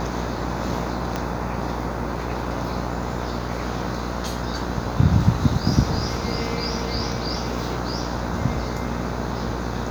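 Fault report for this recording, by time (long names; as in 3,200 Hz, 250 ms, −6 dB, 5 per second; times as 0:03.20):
mains buzz 60 Hz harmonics 26 −29 dBFS
0:01.16: click −11 dBFS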